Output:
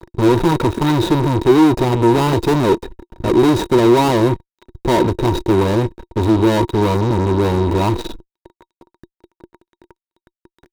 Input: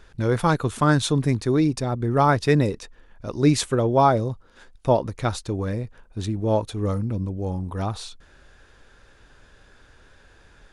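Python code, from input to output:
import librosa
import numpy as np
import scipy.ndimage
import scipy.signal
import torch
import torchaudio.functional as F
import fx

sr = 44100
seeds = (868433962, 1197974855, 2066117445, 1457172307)

y = scipy.signal.medfilt(x, 41)
y = fx.fuzz(y, sr, gain_db=40.0, gate_db=-45.0)
y = fx.small_body(y, sr, hz=(350.0, 940.0, 3800.0), ring_ms=50, db=16)
y = y * 10.0 ** (-4.0 / 20.0)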